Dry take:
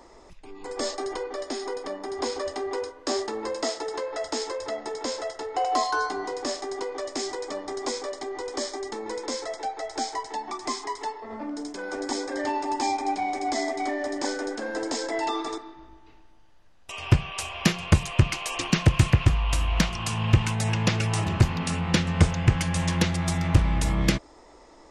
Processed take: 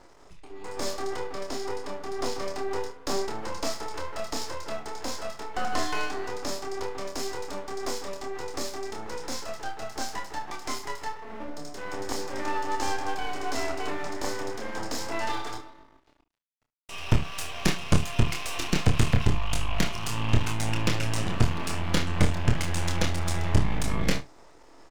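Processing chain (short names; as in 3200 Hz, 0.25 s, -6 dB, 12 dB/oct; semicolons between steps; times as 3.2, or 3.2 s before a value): half-wave rectifier; doubler 33 ms -11 dB; early reflections 26 ms -6 dB, 72 ms -17 dB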